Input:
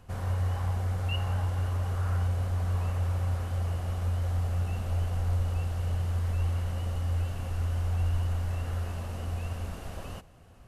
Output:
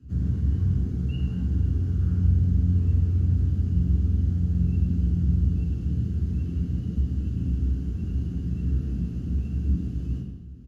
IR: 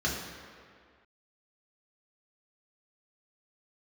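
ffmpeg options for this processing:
-filter_complex "[0:a]firequalizer=gain_entry='entry(300,0);entry(610,-29);entry(3000,-17)':delay=0.05:min_phase=1[link_01];[1:a]atrim=start_sample=2205,afade=type=out:start_time=0.33:duration=0.01,atrim=end_sample=14994[link_02];[link_01][link_02]afir=irnorm=-1:irlink=0"

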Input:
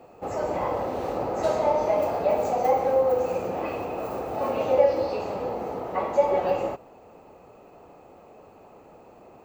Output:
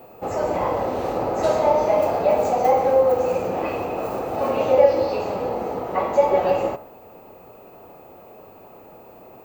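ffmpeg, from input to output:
ffmpeg -i in.wav -af "bandreject=frequency=71.98:width_type=h:width=4,bandreject=frequency=143.96:width_type=h:width=4,bandreject=frequency=215.94:width_type=h:width=4,bandreject=frequency=287.92:width_type=h:width=4,bandreject=frequency=359.9:width_type=h:width=4,bandreject=frequency=431.88:width_type=h:width=4,bandreject=frequency=503.86:width_type=h:width=4,bandreject=frequency=575.84:width_type=h:width=4,bandreject=frequency=647.82:width_type=h:width=4,bandreject=frequency=719.8:width_type=h:width=4,bandreject=frequency=791.78:width_type=h:width=4,bandreject=frequency=863.76:width_type=h:width=4,bandreject=frequency=935.74:width_type=h:width=4,bandreject=frequency=1007.72:width_type=h:width=4,bandreject=frequency=1079.7:width_type=h:width=4,bandreject=frequency=1151.68:width_type=h:width=4,bandreject=frequency=1223.66:width_type=h:width=4,bandreject=frequency=1295.64:width_type=h:width=4,bandreject=frequency=1367.62:width_type=h:width=4,bandreject=frequency=1439.6:width_type=h:width=4,bandreject=frequency=1511.58:width_type=h:width=4,bandreject=frequency=1583.56:width_type=h:width=4,bandreject=frequency=1655.54:width_type=h:width=4,bandreject=frequency=1727.52:width_type=h:width=4,bandreject=frequency=1799.5:width_type=h:width=4,bandreject=frequency=1871.48:width_type=h:width=4,bandreject=frequency=1943.46:width_type=h:width=4,bandreject=frequency=2015.44:width_type=h:width=4,bandreject=frequency=2087.42:width_type=h:width=4,bandreject=frequency=2159.4:width_type=h:width=4,aeval=exprs='val(0)+0.00178*sin(2*PI*16000*n/s)':channel_layout=same,volume=5dB" out.wav

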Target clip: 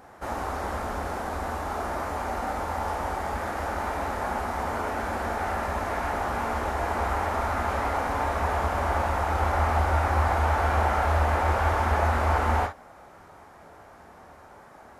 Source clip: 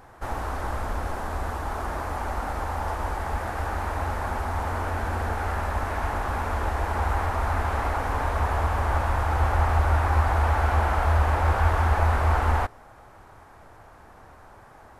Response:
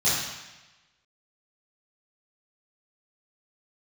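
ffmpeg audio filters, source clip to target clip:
-filter_complex "[0:a]highpass=frequency=110:poles=1,asplit=2[link_01][link_02];[link_02]bass=frequency=250:gain=-5,treble=frequency=4000:gain=-2[link_03];[1:a]atrim=start_sample=2205,atrim=end_sample=3087[link_04];[link_03][link_04]afir=irnorm=-1:irlink=0,volume=-16dB[link_05];[link_01][link_05]amix=inputs=2:normalize=0"

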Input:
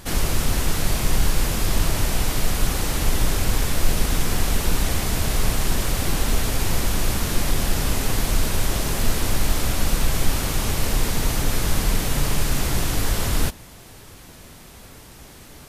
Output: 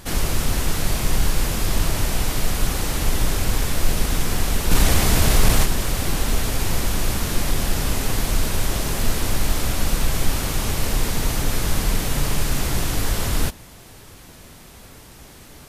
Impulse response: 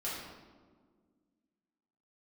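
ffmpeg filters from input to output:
-filter_complex "[0:a]asplit=3[link_01][link_02][link_03];[link_01]afade=type=out:start_time=4.7:duration=0.02[link_04];[link_02]acontrast=58,afade=type=in:start_time=4.7:duration=0.02,afade=type=out:start_time=5.64:duration=0.02[link_05];[link_03]afade=type=in:start_time=5.64:duration=0.02[link_06];[link_04][link_05][link_06]amix=inputs=3:normalize=0"

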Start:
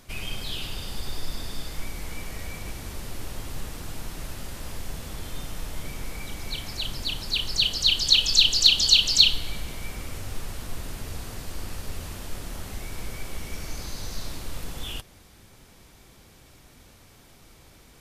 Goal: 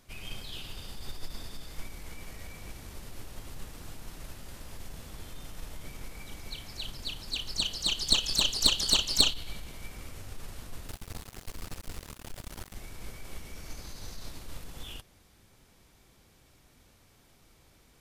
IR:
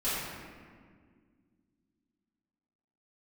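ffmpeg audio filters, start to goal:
-filter_complex "[0:a]asettb=1/sr,asplit=3[link_01][link_02][link_03];[link_01]atrim=end=10.884[link_04];[link_02]atrim=start=10.88:end=12.75,asetpts=PTS-STARTPTS,afade=type=in:duration=0.004:curve=qsin,afade=type=out:start_time=1.866:duration=0.004:curve=qsin,acrusher=bits=4:mix=0:aa=0.5[link_05];[link_03]atrim=start=12.746[link_06];[link_04][link_05]acrossfade=duration=0.004:curve1=hsin:curve2=qsin[link_07];[link_07][link_06]acrossfade=duration=0.004:curve1=qsin:curve2=hsin,aeval=exprs='0.891*(cos(1*acos(clip(val(0)/0.891,-1,1)))-cos(1*PI/2))+0.282*(cos(2*acos(clip(val(0)/0.891,-1,1)))-cos(2*PI/2))+0.1*(cos(3*acos(clip(val(0)/0.891,-1,1)))-cos(3*PI/2))+0.0501*(cos(6*acos(clip(val(0)/0.891,-1,1)))-cos(6*PI/2))':channel_layout=same,volume=-5dB"

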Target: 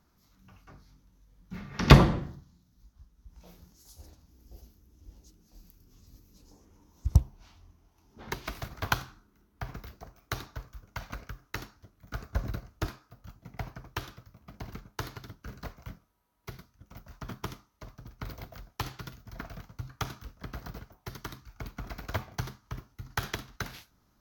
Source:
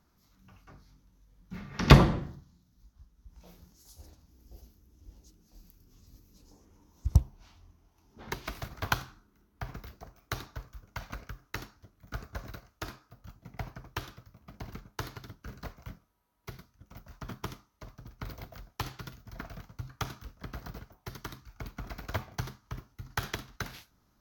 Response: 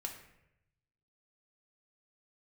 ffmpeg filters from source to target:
-filter_complex "[0:a]asettb=1/sr,asplit=3[link_01][link_02][link_03];[link_01]atrim=end=12.354[link_04];[link_02]atrim=start=12.35:end=12.87,asetpts=PTS-STARTPTS,afade=type=in:duration=0.004:curve=qsin,afade=type=out:start_time=0.516:duration=0.004:curve=qsin,lowshelf=frequency=460:gain=10[link_05];[link_03]atrim=start=12.866[link_06];[link_04][link_05]acrossfade=duration=0.004:curve1=hsin:curve2=qsin[link_07];[link_07][link_06]acrossfade=duration=0.004:curve1=qsin:curve2=hsin,volume=1dB"

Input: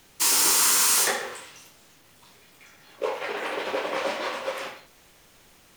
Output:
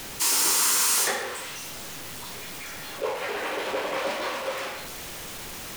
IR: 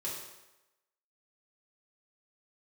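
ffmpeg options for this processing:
-af "aeval=exprs='val(0)+0.5*0.0335*sgn(val(0))':channel_layout=same,volume=-3dB"

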